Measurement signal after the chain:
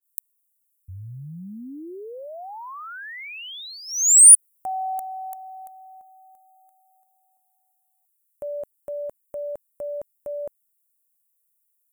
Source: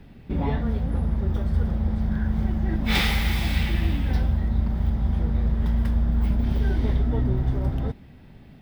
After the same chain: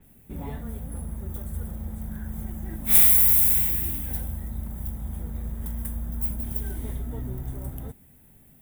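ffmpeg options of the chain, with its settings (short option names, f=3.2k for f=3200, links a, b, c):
-af "aexciter=amount=15.6:drive=8.7:freq=7.5k,adynamicequalizer=threshold=0.0316:dfrequency=6600:dqfactor=0.7:tfrequency=6600:tqfactor=0.7:attack=5:release=100:ratio=0.375:range=2.5:mode=boostabove:tftype=highshelf,volume=-10dB"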